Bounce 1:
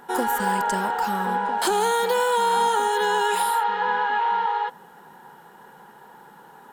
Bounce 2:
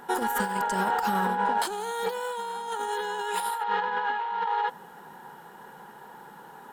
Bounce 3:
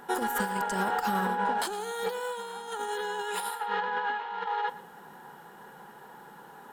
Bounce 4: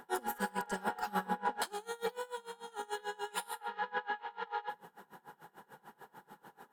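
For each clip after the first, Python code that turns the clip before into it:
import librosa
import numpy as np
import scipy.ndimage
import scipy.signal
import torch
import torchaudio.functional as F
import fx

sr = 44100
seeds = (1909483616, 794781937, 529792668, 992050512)

y1 = fx.over_compress(x, sr, threshold_db=-25.0, ratio=-0.5)
y1 = y1 * librosa.db_to_amplitude(-2.5)
y2 = fx.notch(y1, sr, hz=920.0, q=17.0)
y2 = y2 + 10.0 ** (-17.5 / 20.0) * np.pad(y2, (int(115 * sr / 1000.0), 0))[:len(y2)]
y2 = y2 * librosa.db_to_amplitude(-1.5)
y3 = fx.doubler(y2, sr, ms=49.0, db=-12.5)
y3 = y3 * 10.0 ** (-24 * (0.5 - 0.5 * np.cos(2.0 * np.pi * 6.8 * np.arange(len(y3)) / sr)) / 20.0)
y3 = y3 * librosa.db_to_amplitude(-2.0)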